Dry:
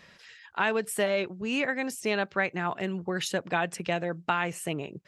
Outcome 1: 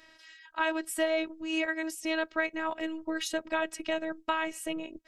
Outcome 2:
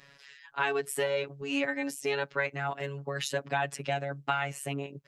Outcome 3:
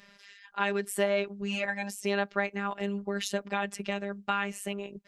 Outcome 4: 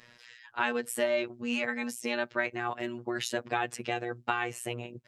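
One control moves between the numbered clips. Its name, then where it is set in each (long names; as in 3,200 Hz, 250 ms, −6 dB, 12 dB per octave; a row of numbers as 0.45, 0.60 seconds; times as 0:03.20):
phases set to zero, frequency: 320, 140, 200, 120 Hertz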